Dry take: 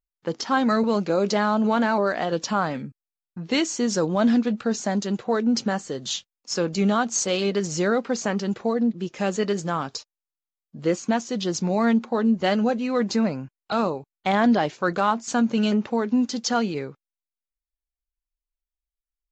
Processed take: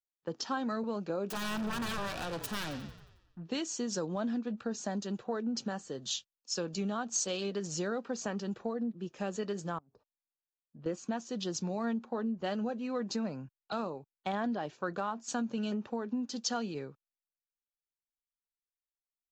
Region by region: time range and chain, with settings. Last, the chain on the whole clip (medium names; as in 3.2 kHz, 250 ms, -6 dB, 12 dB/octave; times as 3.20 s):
1.28–3.45 s: self-modulated delay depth 0.72 ms + frequency-shifting echo 90 ms, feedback 65%, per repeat -41 Hz, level -13.5 dB + hard clipper -23.5 dBFS
9.78–10.86 s: low-pass that closes with the level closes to 310 Hz, closed at -27 dBFS + inverted gate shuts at -25 dBFS, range -24 dB
whole clip: band-stop 2.1 kHz, Q 6.6; compression, threshold -23 dBFS; three bands expanded up and down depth 40%; trim -8 dB